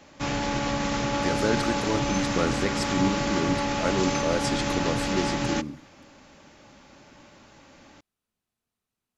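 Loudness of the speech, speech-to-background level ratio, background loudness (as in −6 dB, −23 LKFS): −29.5 LKFS, −2.5 dB, −27.0 LKFS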